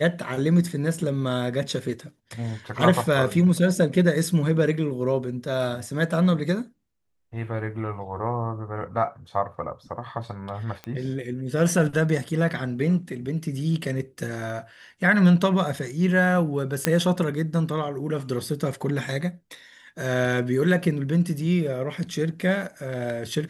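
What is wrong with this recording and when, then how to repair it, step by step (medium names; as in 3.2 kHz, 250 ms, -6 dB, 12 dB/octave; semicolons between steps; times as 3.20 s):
10.84 s: pop -20 dBFS
16.85 s: pop -4 dBFS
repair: de-click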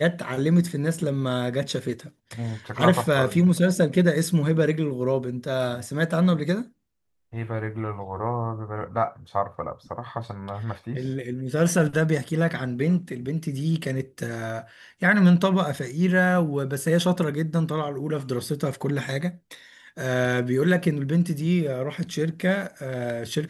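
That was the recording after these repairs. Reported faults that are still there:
nothing left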